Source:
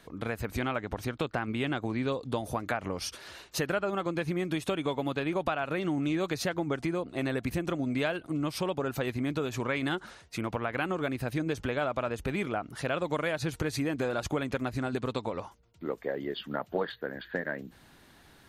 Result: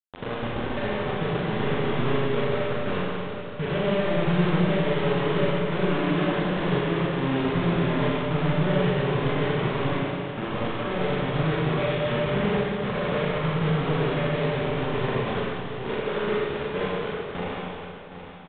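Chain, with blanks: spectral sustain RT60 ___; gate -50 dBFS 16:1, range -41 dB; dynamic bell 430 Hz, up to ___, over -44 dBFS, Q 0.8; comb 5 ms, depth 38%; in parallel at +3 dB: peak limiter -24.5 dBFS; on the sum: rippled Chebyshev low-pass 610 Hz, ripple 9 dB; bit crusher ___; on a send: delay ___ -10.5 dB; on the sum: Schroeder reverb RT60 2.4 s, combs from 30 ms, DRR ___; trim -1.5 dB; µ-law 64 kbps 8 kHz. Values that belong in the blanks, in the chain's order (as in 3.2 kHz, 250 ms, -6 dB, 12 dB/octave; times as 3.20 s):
0.37 s, -4 dB, 5-bit, 768 ms, -6 dB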